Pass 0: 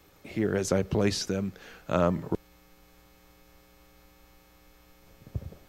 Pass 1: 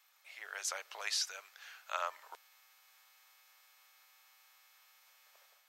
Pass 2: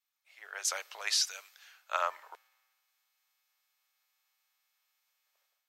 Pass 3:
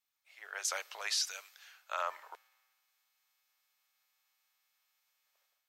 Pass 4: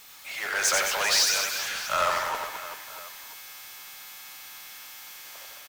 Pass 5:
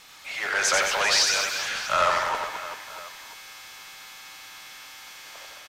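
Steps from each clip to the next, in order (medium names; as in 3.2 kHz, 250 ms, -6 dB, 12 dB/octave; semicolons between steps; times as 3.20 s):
Bessel high-pass 1.3 kHz, order 6; level rider gain up to 4.5 dB; trim -6 dB
three bands expanded up and down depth 70%
peak limiter -22.5 dBFS, peak gain reduction 7.5 dB
power-law waveshaper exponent 0.5; reverse bouncing-ball echo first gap 90 ms, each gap 1.4×, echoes 5; trim +6 dB
distance through air 54 m; trim +3.5 dB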